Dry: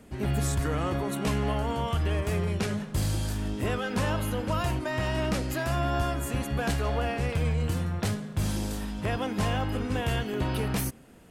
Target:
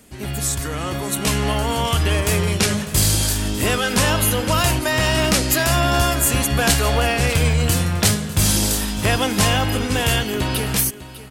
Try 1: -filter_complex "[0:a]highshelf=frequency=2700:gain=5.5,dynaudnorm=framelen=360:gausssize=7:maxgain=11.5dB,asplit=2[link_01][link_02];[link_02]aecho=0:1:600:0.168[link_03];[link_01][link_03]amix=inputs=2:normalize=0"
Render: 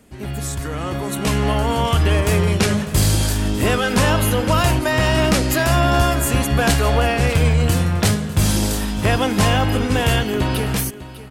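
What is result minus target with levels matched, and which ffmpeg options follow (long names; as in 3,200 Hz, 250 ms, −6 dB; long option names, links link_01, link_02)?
4,000 Hz band −3.0 dB
-filter_complex "[0:a]highshelf=frequency=2700:gain=14,dynaudnorm=framelen=360:gausssize=7:maxgain=11.5dB,asplit=2[link_01][link_02];[link_02]aecho=0:1:600:0.168[link_03];[link_01][link_03]amix=inputs=2:normalize=0"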